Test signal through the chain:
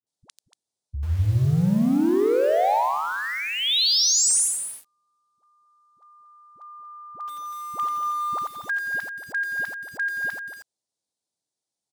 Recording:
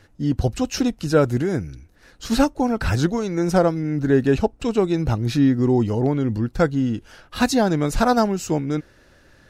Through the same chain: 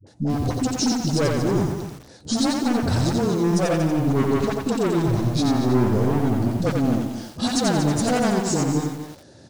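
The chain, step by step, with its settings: HPF 92 Hz 24 dB/oct; band shelf 1800 Hz -12.5 dB; in parallel at +3 dB: compressor 10:1, threshold -29 dBFS; on the sum: overloaded stage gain 19.5 dB; dispersion highs, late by 68 ms, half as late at 430 Hz; on a send: echo 0.234 s -10 dB; on the sum: downsampling 22050 Hz; lo-fi delay 88 ms, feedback 35%, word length 7-bit, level -3.5 dB

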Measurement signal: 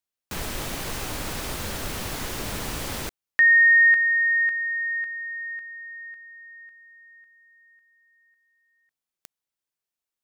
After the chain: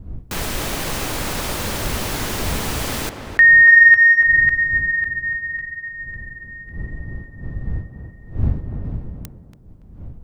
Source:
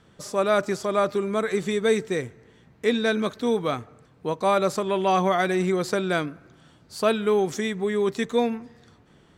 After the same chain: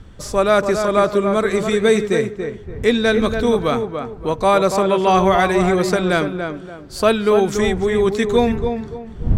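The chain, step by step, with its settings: wind noise 91 Hz -37 dBFS; tape echo 0.285 s, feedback 35%, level -5 dB, low-pass 1600 Hz; gain +6.5 dB

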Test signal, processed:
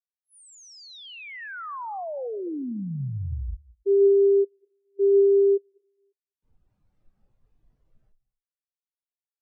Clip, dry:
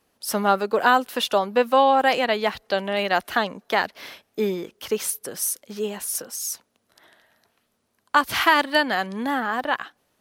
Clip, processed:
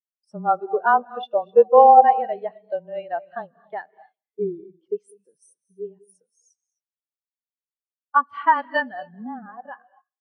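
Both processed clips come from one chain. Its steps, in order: downsampling 22050 Hz; frequency shift -19 Hz; on a send: feedback echo 0.202 s, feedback 35%, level -20.5 dB; on the sum: non-linear reverb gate 0.29 s rising, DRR 7.5 dB; spectral expander 2.5:1; gain +3 dB

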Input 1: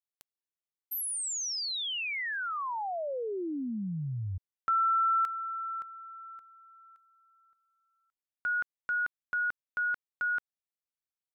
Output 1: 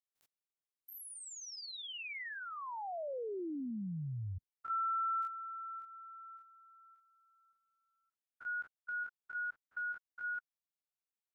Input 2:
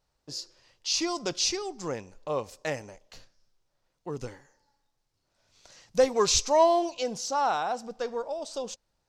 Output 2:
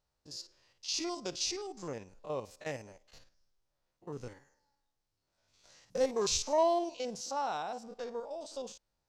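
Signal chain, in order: stepped spectrum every 50 ms; dynamic EQ 1300 Hz, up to -3 dB, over -41 dBFS, Q 1.4; gain -5.5 dB

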